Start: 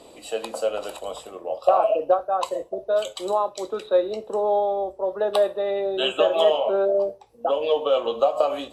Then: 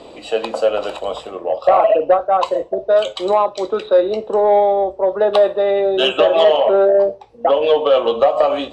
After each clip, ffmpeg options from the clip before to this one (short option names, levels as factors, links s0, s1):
-filter_complex "[0:a]asplit=2[s0][s1];[s1]alimiter=limit=0.211:level=0:latency=1:release=75,volume=0.841[s2];[s0][s2]amix=inputs=2:normalize=0,lowpass=4300,acontrast=39,volume=0.841"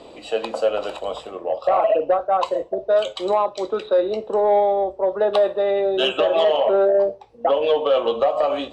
-af "alimiter=level_in=1.78:limit=0.891:release=50:level=0:latency=1,volume=0.355"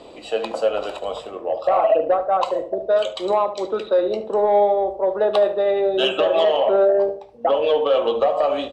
-filter_complex "[0:a]asplit=2[s0][s1];[s1]adelay=73,lowpass=f=1200:p=1,volume=0.355,asplit=2[s2][s3];[s3]adelay=73,lowpass=f=1200:p=1,volume=0.39,asplit=2[s4][s5];[s5]adelay=73,lowpass=f=1200:p=1,volume=0.39,asplit=2[s6][s7];[s7]adelay=73,lowpass=f=1200:p=1,volume=0.39[s8];[s0][s2][s4][s6][s8]amix=inputs=5:normalize=0"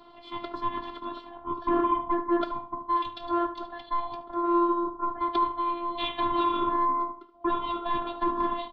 -af "aeval=exprs='val(0)*sin(2*PI*430*n/s)':c=same,highpass=f=110:w=0.5412,highpass=f=110:w=1.3066,equalizer=f=140:t=q:w=4:g=4,equalizer=f=370:t=q:w=4:g=3,equalizer=f=880:t=q:w=4:g=-5,equalizer=f=1600:t=q:w=4:g=-6,equalizer=f=2500:t=q:w=4:g=-8,lowpass=f=3800:w=0.5412,lowpass=f=3800:w=1.3066,afftfilt=real='hypot(re,im)*cos(PI*b)':imag='0':win_size=512:overlap=0.75"